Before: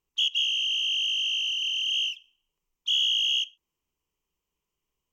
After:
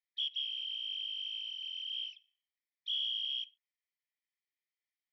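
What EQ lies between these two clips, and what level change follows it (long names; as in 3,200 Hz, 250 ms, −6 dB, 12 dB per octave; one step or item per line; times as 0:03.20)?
linear-phase brick-wall band-pass 1,700–5,800 Hz
high-frequency loss of the air 290 metres
phaser with its sweep stopped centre 2,800 Hz, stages 6
+4.5 dB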